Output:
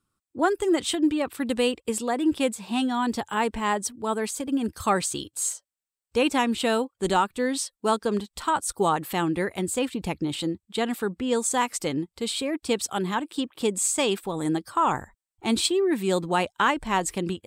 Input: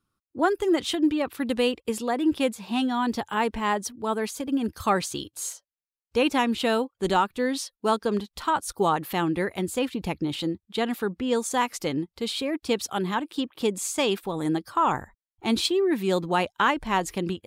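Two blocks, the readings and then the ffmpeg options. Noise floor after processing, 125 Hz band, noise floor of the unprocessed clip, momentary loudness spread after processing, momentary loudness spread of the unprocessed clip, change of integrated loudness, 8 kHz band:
below −85 dBFS, 0.0 dB, below −85 dBFS, 6 LU, 6 LU, +0.5 dB, +5.5 dB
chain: -af "equalizer=frequency=8100:width=4.5:gain=11.5"

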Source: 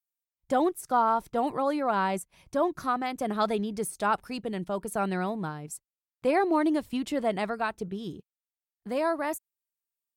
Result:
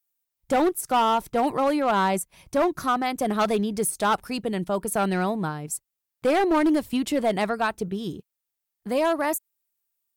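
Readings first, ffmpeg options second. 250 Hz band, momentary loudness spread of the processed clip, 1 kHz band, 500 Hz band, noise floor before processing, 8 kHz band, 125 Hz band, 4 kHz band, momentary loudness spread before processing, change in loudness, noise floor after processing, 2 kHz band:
+5.0 dB, 9 LU, +3.5 dB, +4.5 dB, below −85 dBFS, +9.5 dB, +5.5 dB, +8.0 dB, 11 LU, +4.5 dB, −84 dBFS, +5.0 dB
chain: -af "highshelf=frequency=9100:gain=7.5,volume=22dB,asoftclip=hard,volume=-22dB,volume=5.5dB"

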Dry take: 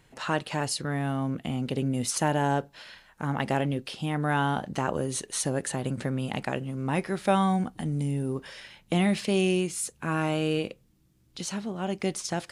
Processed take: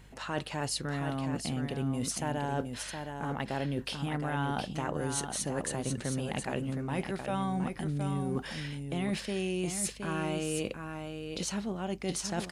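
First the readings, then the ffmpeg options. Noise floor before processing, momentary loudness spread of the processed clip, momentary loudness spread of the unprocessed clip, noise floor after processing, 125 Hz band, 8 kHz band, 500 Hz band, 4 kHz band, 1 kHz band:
−63 dBFS, 4 LU, 8 LU, −45 dBFS, −4.5 dB, −2.5 dB, −5.5 dB, −3.0 dB, −6.5 dB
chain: -af "areverse,acompressor=threshold=-33dB:ratio=6,areverse,aeval=exprs='val(0)+0.00126*(sin(2*PI*50*n/s)+sin(2*PI*2*50*n/s)/2+sin(2*PI*3*50*n/s)/3+sin(2*PI*4*50*n/s)/4+sin(2*PI*5*50*n/s)/5)':channel_layout=same,aecho=1:1:717:0.473,volume=2.5dB"

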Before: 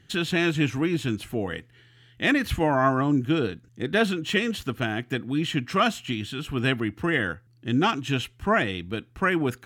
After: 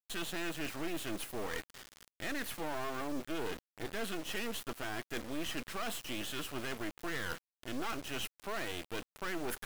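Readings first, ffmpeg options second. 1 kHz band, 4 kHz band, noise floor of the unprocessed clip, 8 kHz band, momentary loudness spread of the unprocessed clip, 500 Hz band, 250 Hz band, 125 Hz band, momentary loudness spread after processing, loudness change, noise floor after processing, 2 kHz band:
−14.5 dB, −10.5 dB, −58 dBFS, −2.5 dB, 8 LU, −14.0 dB, −16.5 dB, −21.0 dB, 4 LU, −14.5 dB, below −85 dBFS, −13.5 dB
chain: -af "highpass=380,aemphasis=mode=reproduction:type=50fm,bandreject=frequency=2300:width=21,alimiter=limit=-17.5dB:level=0:latency=1:release=375,areverse,acompressor=threshold=-40dB:ratio=4,areverse,aexciter=amount=6.9:drive=6.5:freq=8500,acrusher=bits=6:dc=4:mix=0:aa=0.000001,asoftclip=type=tanh:threshold=-37.5dB,volume=9.5dB"

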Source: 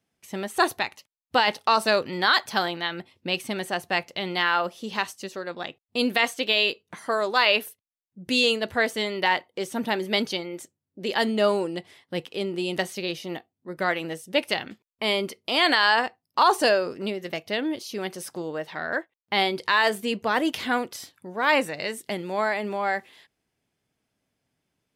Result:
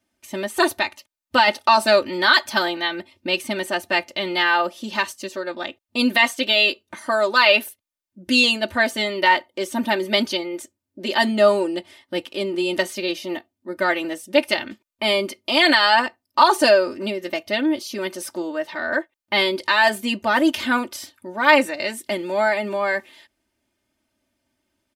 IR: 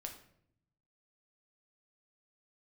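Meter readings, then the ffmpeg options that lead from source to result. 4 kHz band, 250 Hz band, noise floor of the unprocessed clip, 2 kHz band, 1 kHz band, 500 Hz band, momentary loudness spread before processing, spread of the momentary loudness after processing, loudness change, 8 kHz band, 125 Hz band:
+4.5 dB, +5.5 dB, −85 dBFS, +5.5 dB, +4.5 dB, +5.5 dB, 13 LU, 14 LU, +5.0 dB, +5.0 dB, can't be measured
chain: -af "aecho=1:1:3.3:0.95,volume=2dB"

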